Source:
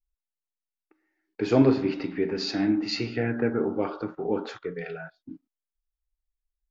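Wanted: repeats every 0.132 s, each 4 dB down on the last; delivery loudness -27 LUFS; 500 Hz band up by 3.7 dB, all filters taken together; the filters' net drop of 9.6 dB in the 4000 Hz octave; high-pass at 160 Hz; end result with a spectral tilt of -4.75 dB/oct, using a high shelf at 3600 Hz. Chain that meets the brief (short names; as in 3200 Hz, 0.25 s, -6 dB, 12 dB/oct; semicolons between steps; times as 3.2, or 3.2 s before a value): HPF 160 Hz; bell 500 Hz +5 dB; high shelf 3600 Hz -5.5 dB; bell 4000 Hz -7.5 dB; feedback echo 0.132 s, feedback 63%, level -4 dB; gain -3.5 dB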